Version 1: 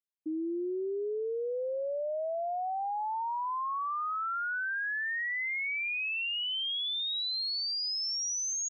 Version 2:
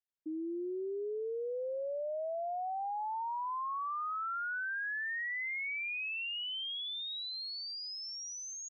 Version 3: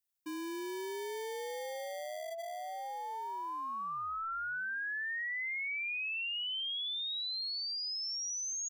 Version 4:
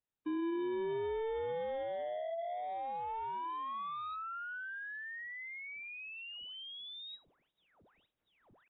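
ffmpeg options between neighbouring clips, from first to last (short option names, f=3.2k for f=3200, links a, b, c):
-af "bass=f=250:g=-4,treble=f=4k:g=-8,volume=-3.5dB"
-filter_complex "[0:a]acrossover=split=630[a][b];[a]acrusher=samples=33:mix=1:aa=0.000001[c];[b]crystalizer=i=2:c=0[d];[c][d]amix=inputs=2:normalize=0,volume=-1.5dB"
-af "aeval=exprs='0.0133*(abs(mod(val(0)/0.0133+3,4)-2)-1)':c=same,tiltshelf=f=1.2k:g=7" -ar 16000 -c:a aac -b:a 16k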